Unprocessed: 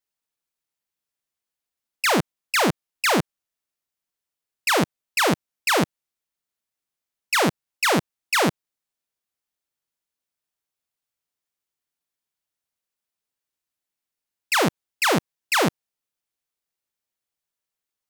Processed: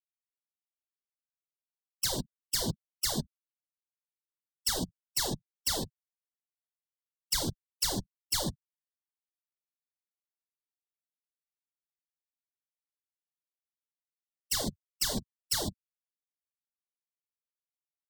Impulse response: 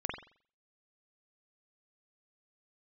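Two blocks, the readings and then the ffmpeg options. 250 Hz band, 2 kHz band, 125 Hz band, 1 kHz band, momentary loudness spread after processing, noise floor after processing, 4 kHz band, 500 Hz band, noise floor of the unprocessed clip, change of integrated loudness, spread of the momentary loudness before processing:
-13.0 dB, -21.5 dB, -9.0 dB, -19.5 dB, 6 LU, under -85 dBFS, -6.5 dB, -16.5 dB, under -85 dBFS, -10.0 dB, 4 LU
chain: -filter_complex "[0:a]aexciter=amount=12.3:drive=3.5:freq=3.9k,equalizer=f=1.2k:t=o:w=0.23:g=-6,asoftclip=type=hard:threshold=-11dB,acrossover=split=160[a][b];[b]acompressor=threshold=-23dB:ratio=6[c];[a][c]amix=inputs=2:normalize=0,adynamicequalizer=threshold=0.00316:dfrequency=120:dqfactor=6.8:tfrequency=120:tqfactor=6.8:attack=5:release=100:ratio=0.375:range=2.5:mode=boostabove:tftype=bell,afftfilt=real='hypot(re,im)*cos(2*PI*random(0))':imag='hypot(re,im)*sin(2*PI*random(1))':win_size=512:overlap=0.75,afftfilt=real='re*gte(hypot(re,im),0.00794)':imag='im*gte(hypot(re,im),0.00794)':win_size=1024:overlap=0.75"

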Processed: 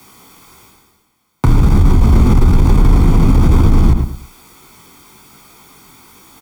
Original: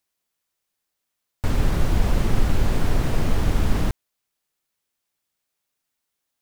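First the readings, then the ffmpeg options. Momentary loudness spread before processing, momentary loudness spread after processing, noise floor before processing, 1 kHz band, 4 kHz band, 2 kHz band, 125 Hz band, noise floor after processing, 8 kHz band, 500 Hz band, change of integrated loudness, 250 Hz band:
5 LU, 5 LU, -80 dBFS, +9.0 dB, +3.5 dB, +3.0 dB, +13.5 dB, -61 dBFS, +5.0 dB, +7.5 dB, +12.0 dB, +13.5 dB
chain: -filter_complex "[0:a]aecho=1:1:0.9:0.71,flanger=delay=16:depth=6.1:speed=1.1,lowshelf=f=260:g=-10.5,areverse,acompressor=mode=upward:threshold=-43dB:ratio=2.5,areverse,tiltshelf=f=920:g=9.5,asoftclip=type=tanh:threshold=-11.5dB,afreqshift=23,acrossover=split=80|3800[a][b][c];[a]acompressor=threshold=-28dB:ratio=4[d];[b]acompressor=threshold=-32dB:ratio=4[e];[c]acompressor=threshold=-56dB:ratio=4[f];[d][e][f]amix=inputs=3:normalize=0,asplit=2[g][h];[h]adelay=106,lowpass=f=3.2k:p=1,volume=-10dB,asplit=2[i][j];[j]adelay=106,lowpass=f=3.2k:p=1,volume=0.3,asplit=2[k][l];[l]adelay=106,lowpass=f=3.2k:p=1,volume=0.3[m];[g][i][k][m]amix=inputs=4:normalize=0,alimiter=level_in=25.5dB:limit=-1dB:release=50:level=0:latency=1,volume=-1dB"

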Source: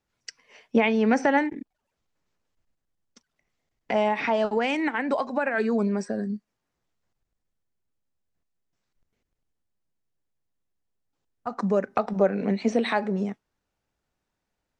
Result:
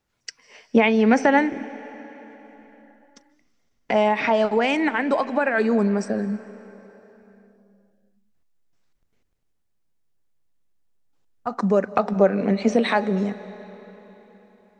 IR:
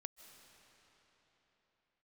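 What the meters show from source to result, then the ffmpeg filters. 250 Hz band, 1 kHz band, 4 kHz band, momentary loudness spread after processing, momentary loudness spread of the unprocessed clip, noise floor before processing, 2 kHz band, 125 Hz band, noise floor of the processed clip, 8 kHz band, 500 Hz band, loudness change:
+4.5 dB, +4.0 dB, +4.5 dB, 19 LU, 15 LU, -82 dBFS, +4.5 dB, +4.5 dB, -69 dBFS, n/a, +4.5 dB, +4.0 dB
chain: -filter_complex "[0:a]asplit=2[a][b];[1:a]atrim=start_sample=2205[c];[b][c]afir=irnorm=-1:irlink=0,volume=1.5dB[d];[a][d]amix=inputs=2:normalize=0"

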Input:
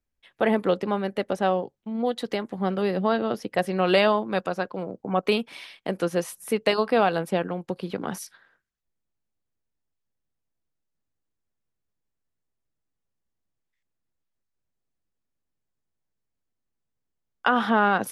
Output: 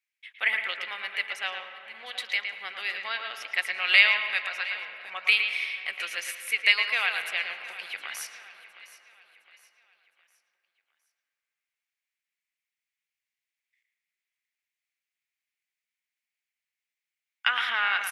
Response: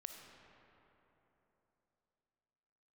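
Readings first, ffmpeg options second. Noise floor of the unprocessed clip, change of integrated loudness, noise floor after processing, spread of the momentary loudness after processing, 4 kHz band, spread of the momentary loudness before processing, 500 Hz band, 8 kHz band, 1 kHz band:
-81 dBFS, -0.5 dB, under -85 dBFS, 16 LU, +6.5 dB, 11 LU, -22.5 dB, +0.5 dB, -10.0 dB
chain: -filter_complex "[0:a]highpass=f=2.2k:t=q:w=4.4,aecho=1:1:712|1424|2136|2848:0.141|0.0593|0.0249|0.0105,asplit=2[a][b];[1:a]atrim=start_sample=2205,lowpass=3.9k,adelay=113[c];[b][c]afir=irnorm=-1:irlink=0,volume=-0.5dB[d];[a][d]amix=inputs=2:normalize=0"

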